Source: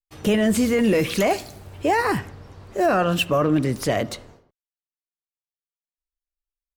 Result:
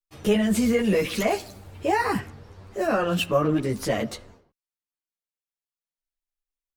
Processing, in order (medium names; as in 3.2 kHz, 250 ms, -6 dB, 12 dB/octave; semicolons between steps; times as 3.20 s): three-phase chorus